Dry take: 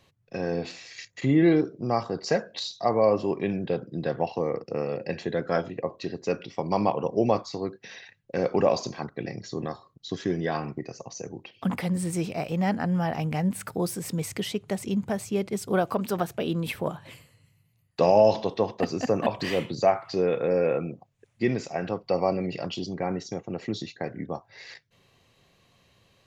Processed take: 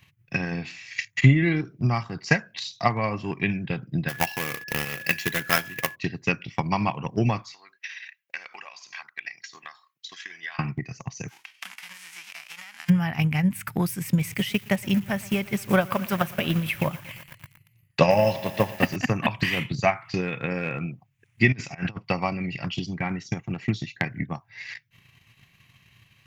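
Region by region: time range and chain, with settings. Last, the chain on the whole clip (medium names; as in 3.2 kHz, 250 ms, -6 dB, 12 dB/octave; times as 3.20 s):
4.08–5.94 s: tone controls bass -8 dB, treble +13 dB + companded quantiser 4-bit + whistle 1.7 kHz -41 dBFS
7.53–10.59 s: high-pass 1.2 kHz + compression 3:1, threshold -43 dBFS
11.28–12.88 s: formants flattened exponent 0.3 + band-pass 680–7700 Hz + compression 10:1, threshold -44 dBFS
14.08–18.96 s: peaking EQ 560 Hz +12.5 dB 0.22 oct + bit-crushed delay 116 ms, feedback 80%, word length 6-bit, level -14.5 dB
21.52–22.05 s: low-pass 8.4 kHz + compressor with a negative ratio -33 dBFS, ratio -0.5
whole clip: graphic EQ 125/500/1000/4000/8000 Hz +10/-12/+7/-11/-9 dB; transient shaper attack +9 dB, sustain -3 dB; resonant high shelf 1.6 kHz +12.5 dB, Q 1.5; trim -2 dB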